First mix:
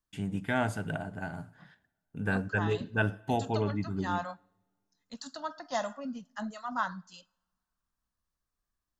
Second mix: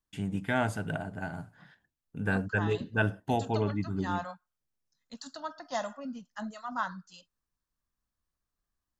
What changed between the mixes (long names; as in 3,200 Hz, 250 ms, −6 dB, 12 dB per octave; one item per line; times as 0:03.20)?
first voice +3.5 dB
reverb: off